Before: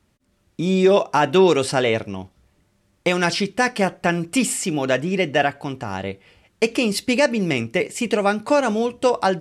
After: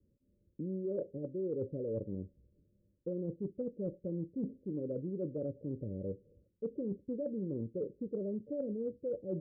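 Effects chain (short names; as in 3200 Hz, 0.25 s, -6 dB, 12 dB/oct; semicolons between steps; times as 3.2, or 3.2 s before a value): Chebyshev low-pass 570 Hz, order 8; reverse; compressor 12:1, threshold -27 dBFS, peak gain reduction 16 dB; reverse; gain -7 dB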